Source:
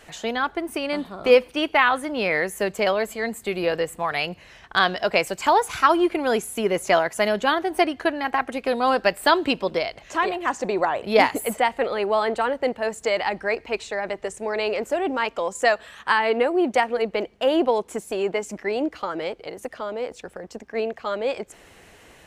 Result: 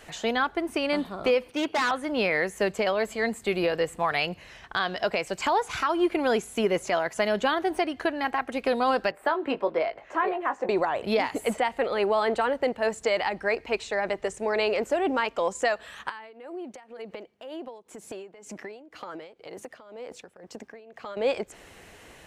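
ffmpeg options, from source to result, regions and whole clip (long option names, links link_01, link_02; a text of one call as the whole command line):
ffmpeg -i in.wav -filter_complex "[0:a]asettb=1/sr,asplit=3[link_01][link_02][link_03];[link_01]atrim=end=1.504[link_04];[link_02]atrim=start=1.5:end=1.91,asetpts=PTS-STARTPTS,afade=type=in:duration=0.004:curve=qsin,afade=type=out:start_time=0.406:duration=0.004:curve=qsin,highshelf=frequency=4700:gain=-9,volume=22.5dB,asoftclip=hard,volume=-22.5dB,highpass=frequency=93:width=0.5412,highpass=frequency=93:width=1.3066[link_05];[link_03]atrim=start=1.906[link_06];[link_04][link_05]acrossfade=duration=0.004:curve1=hsin:curve2=qsin[link_07];[link_07][link_06]acrossfade=duration=0.004:curve1=qsin:curve2=hsin,asettb=1/sr,asplit=3[link_08][link_09][link_10];[link_08]atrim=end=9.114[link_11];[link_09]atrim=start=9.11:end=10.69,asetpts=PTS-STARTPTS,afade=type=in:duration=0.004:curve=qsin,afade=type=out:start_time=1.576:duration=0.004:curve=qsin,acrossover=split=290 2100:gain=0.2 1 0.112[link_12][link_13][link_14];[link_12][link_13][link_14]amix=inputs=3:normalize=0,asplit=2[link_15][link_16];[link_16]adelay=19,volume=-8dB[link_17];[link_15][link_17]amix=inputs=2:normalize=0,atrim=end_sample=69678[link_18];[link_10]atrim=start=10.686[link_19];[link_11][link_18]acrossfade=duration=0.004:curve1=hsin:curve2=qsin[link_20];[link_20][link_19]acrossfade=duration=0.004:curve1=qsin:curve2=hsin,asettb=1/sr,asplit=3[link_21][link_22][link_23];[link_21]atrim=end=16.094[link_24];[link_22]atrim=start=16.09:end=21.17,asetpts=PTS-STARTPTS,afade=type=in:duration=0.004:curve=qsin,afade=type=out:start_time=5.076:duration=0.004:curve=qsin,highpass=110,acompressor=threshold=-33dB:ratio=12:attack=3.2:release=140:knee=1:detection=peak,tremolo=f=2:d=0.78[link_25];[link_23]atrim=start=21.166[link_26];[link_24][link_25]acrossfade=duration=0.004:curve1=hsin:curve2=qsin[link_27];[link_27][link_26]acrossfade=duration=0.004:curve1=qsin:curve2=hsin,acrossover=split=8100[link_28][link_29];[link_29]acompressor=threshold=-54dB:ratio=4:attack=1:release=60[link_30];[link_28][link_30]amix=inputs=2:normalize=0,alimiter=limit=-14.5dB:level=0:latency=1:release=232" out.wav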